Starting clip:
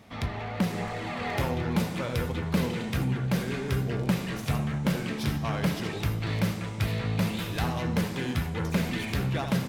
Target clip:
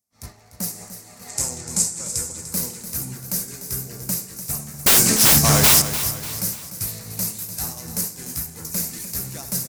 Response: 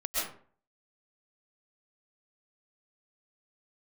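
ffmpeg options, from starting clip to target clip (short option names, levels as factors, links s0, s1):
-filter_complex "[0:a]agate=range=0.0224:threshold=0.0562:ratio=3:detection=peak,aexciter=amount=12.9:drive=8.5:freq=5100,aeval=exprs='0.75*(cos(1*acos(clip(val(0)/0.75,-1,1)))-cos(1*PI/2))+0.0211*(cos(6*acos(clip(val(0)/0.75,-1,1)))-cos(6*PI/2))+0.00944*(cos(8*acos(clip(val(0)/0.75,-1,1)))-cos(8*PI/2))':c=same,asettb=1/sr,asplit=3[s0][s1][s2];[s0]atrim=end=1.284[s3];[s1]atrim=start=1.28:end=2.38,asetpts=PTS-STARTPTS,afade=t=in:d=0.004:c=qsin,afade=t=out:st=1.096:d=0.004:c=qsin,lowpass=f=7800:t=q:w=4.2[s4];[s2]atrim=start=2.376[s5];[s3][s4]acrossfade=d=0.004:c1=hsin:c2=qsin[s6];[s6][s5]acrossfade=d=0.004:c1=qsin:c2=hsin,asettb=1/sr,asplit=3[s7][s8][s9];[s7]atrim=end=4.864[s10];[s8]atrim=start=4.86:end=5.82,asetpts=PTS-STARTPTS,afade=t=in:d=0.004:c=qsin,afade=t=out:st=0.956:d=0.004:c=qsin,aeval=exprs='0.668*sin(PI/2*8.91*val(0)/0.668)':c=same[s11];[s9]atrim=start=5.816[s12];[s10][s11]acrossfade=d=0.004:c1=hsin:c2=qsin[s13];[s13][s12]acrossfade=d=0.004:c1=qsin:c2=hsin,asplit=2[s14][s15];[s15]aecho=0:1:296|592|888|1184|1480:0.266|0.12|0.0539|0.0242|0.0109[s16];[s14][s16]amix=inputs=2:normalize=0,volume=0.501"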